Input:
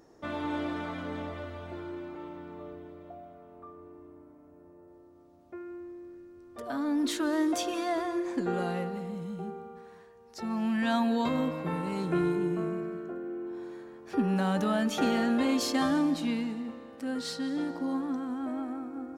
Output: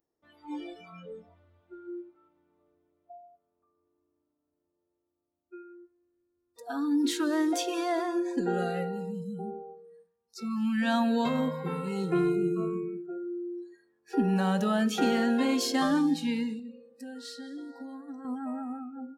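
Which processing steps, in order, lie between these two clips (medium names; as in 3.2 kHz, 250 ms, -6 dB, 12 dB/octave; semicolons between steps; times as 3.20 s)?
spectral noise reduction 29 dB; 16.59–18.25 s: compression 6:1, threshold -41 dBFS, peak gain reduction 12.5 dB; on a send: reverberation RT60 0.60 s, pre-delay 3 ms, DRR 17.5 dB; on the sum: trim +1.5 dB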